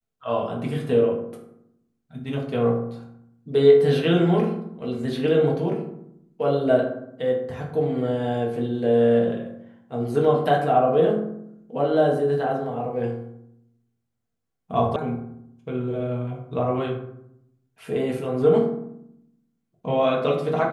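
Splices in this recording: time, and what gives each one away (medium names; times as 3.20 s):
14.96 s: sound stops dead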